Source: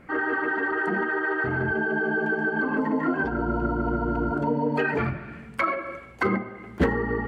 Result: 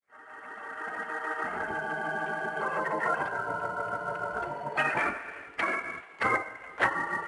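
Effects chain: fade-in on the opening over 2.12 s; low-pass 1.9 kHz 12 dB/octave; spectral gate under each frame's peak -10 dB weak; tilt EQ +3.5 dB/octave; trim +5 dB; IMA ADPCM 88 kbps 22.05 kHz

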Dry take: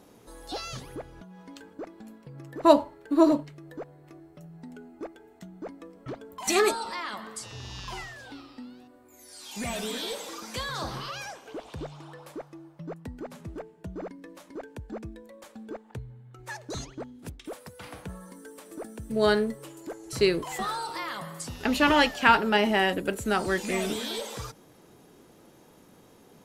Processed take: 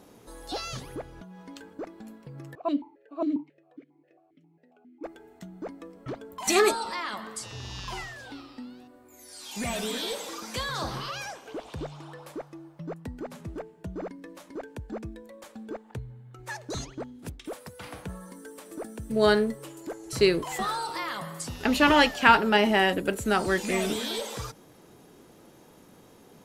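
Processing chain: 2.55–5.04 s: stepped vowel filter 7.4 Hz; trim +1.5 dB

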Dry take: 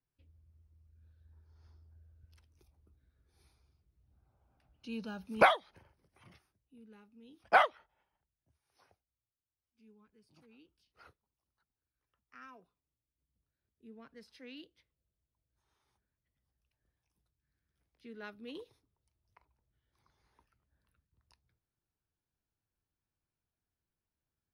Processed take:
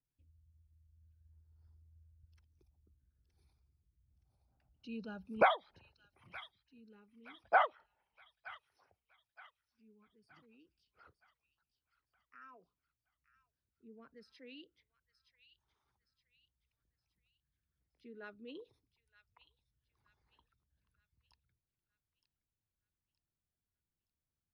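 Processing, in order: resonances exaggerated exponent 1.5; feedback echo behind a high-pass 920 ms, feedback 41%, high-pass 2.3 kHz, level -9.5 dB; trim -3.5 dB

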